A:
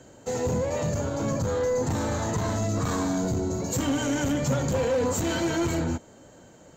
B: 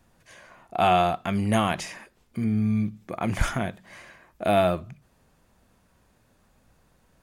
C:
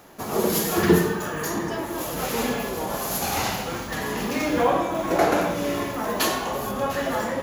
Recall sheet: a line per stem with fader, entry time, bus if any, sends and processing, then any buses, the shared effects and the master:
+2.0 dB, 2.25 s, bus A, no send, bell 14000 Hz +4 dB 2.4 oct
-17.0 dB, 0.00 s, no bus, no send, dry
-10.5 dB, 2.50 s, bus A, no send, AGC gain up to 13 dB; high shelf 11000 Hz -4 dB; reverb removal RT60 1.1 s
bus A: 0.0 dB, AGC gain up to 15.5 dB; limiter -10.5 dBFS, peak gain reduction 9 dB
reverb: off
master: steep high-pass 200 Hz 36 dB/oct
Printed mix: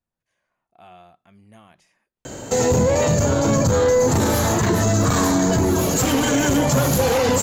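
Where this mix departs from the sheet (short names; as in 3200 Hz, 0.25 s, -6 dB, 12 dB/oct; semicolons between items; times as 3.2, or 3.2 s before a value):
stem B -17.0 dB -> -26.0 dB; stem C: entry 2.50 s -> 3.80 s; master: missing steep high-pass 200 Hz 36 dB/oct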